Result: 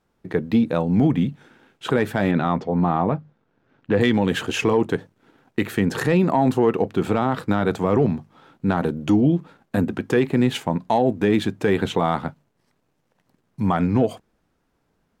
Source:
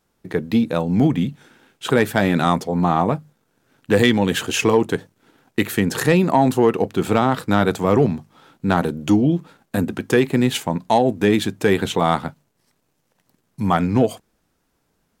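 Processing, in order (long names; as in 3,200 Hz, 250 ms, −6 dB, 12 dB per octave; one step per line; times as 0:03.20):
high-shelf EQ 4,500 Hz −12 dB
brickwall limiter −9 dBFS, peak gain reduction 5.5 dB
0:02.31–0:04.01: high-frequency loss of the air 150 metres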